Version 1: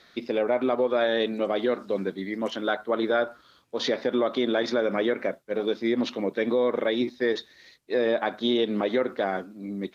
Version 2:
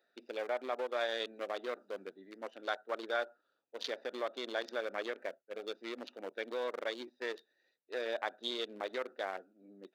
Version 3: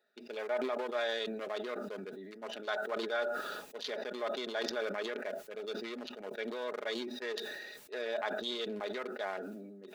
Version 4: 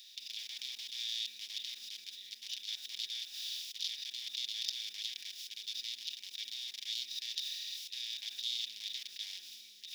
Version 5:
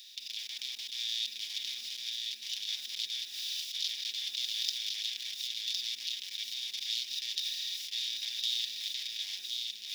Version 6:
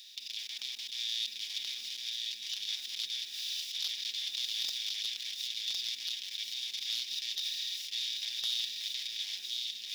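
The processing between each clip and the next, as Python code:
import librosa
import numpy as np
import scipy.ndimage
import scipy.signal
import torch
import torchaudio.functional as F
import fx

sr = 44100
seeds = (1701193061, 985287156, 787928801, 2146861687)

y1 = fx.wiener(x, sr, points=41)
y1 = scipy.signal.sosfilt(scipy.signal.butter(2, 680.0, 'highpass', fs=sr, output='sos'), y1)
y1 = fx.high_shelf(y1, sr, hz=5400.0, db=7.0)
y1 = y1 * 10.0 ** (-6.0 / 20.0)
y2 = y1 + 0.55 * np.pad(y1, (int(4.8 * sr / 1000.0), 0))[:len(y1)]
y2 = fx.sustainer(y2, sr, db_per_s=29.0)
y2 = y2 * 10.0 ** (-1.5 / 20.0)
y3 = fx.bin_compress(y2, sr, power=0.4)
y3 = scipy.signal.sosfilt(scipy.signal.cheby2(4, 40, 1500.0, 'highpass', fs=sr, output='sos'), y3)
y4 = y3 + 10.0 ** (-3.5 / 20.0) * np.pad(y3, (int(1059 * sr / 1000.0), 0))[:len(y3)]
y4 = y4 * 10.0 ** (3.5 / 20.0)
y5 = y4 + 10.0 ** (-13.0 / 20.0) * np.pad(y4, (int(1198 * sr / 1000.0), 0))[:len(y4)]
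y5 = np.clip(y5, -10.0 ** (-25.5 / 20.0), 10.0 ** (-25.5 / 20.0))
y5 = fx.high_shelf(y5, sr, hz=11000.0, db=-3.0)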